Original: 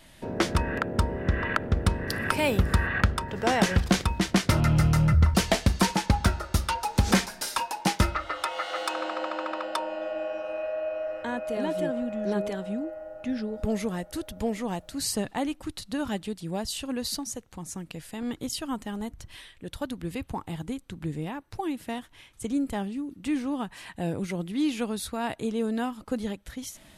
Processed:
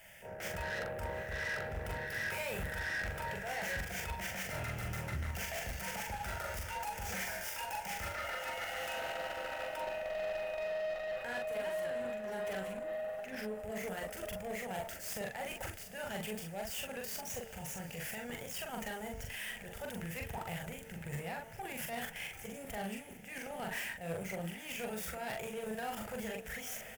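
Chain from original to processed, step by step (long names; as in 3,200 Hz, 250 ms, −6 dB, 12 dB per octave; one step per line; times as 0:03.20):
running median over 5 samples
spectral tilt +2.5 dB per octave
hum removal 224.9 Hz, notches 5
output level in coarse steps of 17 dB
transient designer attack −11 dB, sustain +6 dB
reversed playback
downward compressor, threshold −45 dBFS, peak gain reduction 14 dB
reversed playback
phaser with its sweep stopped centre 1,100 Hz, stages 6
tube saturation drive 50 dB, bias 0.25
double-tracking delay 42 ms −3 dB
on a send: feedback delay with all-pass diffusion 806 ms, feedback 49%, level −15 dB
on the sum: level +14 dB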